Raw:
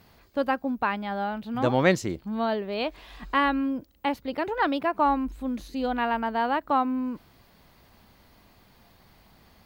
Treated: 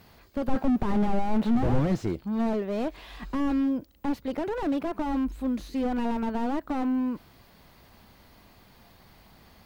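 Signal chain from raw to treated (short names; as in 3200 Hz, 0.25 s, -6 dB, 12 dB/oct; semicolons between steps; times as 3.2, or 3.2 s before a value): 0.48–1.79 overdrive pedal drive 29 dB, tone 1300 Hz, clips at -11 dBFS; slew limiter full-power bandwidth 19 Hz; gain +2 dB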